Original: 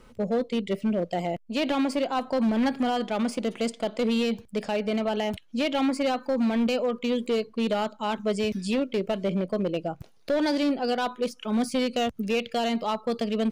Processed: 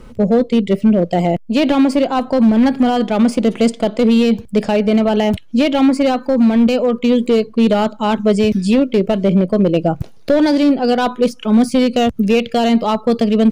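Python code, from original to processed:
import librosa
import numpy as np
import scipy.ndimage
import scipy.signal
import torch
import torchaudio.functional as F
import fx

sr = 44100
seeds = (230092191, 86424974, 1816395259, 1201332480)

p1 = fx.low_shelf(x, sr, hz=430.0, db=8.5)
p2 = fx.rider(p1, sr, range_db=10, speed_s=0.5)
y = p1 + (p2 * 10.0 ** (3.0 / 20.0))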